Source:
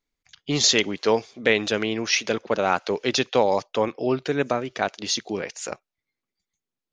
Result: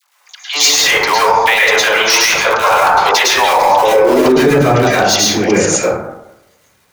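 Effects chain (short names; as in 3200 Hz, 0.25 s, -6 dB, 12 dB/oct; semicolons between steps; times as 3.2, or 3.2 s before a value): high shelf 3900 Hz +8.5 dB; crackle 310/s -53 dBFS; high-pass sweep 920 Hz -> 63 Hz, 3.51–4.72; in parallel at -10 dB: wrapped overs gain 13.5 dB; on the sum: dispersion lows, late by 84 ms, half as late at 690 Hz; hard clip -9.5 dBFS, distortion -18 dB; plate-style reverb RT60 0.89 s, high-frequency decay 0.35×, pre-delay 95 ms, DRR -8.5 dB; maximiser +7.5 dB; gain -1 dB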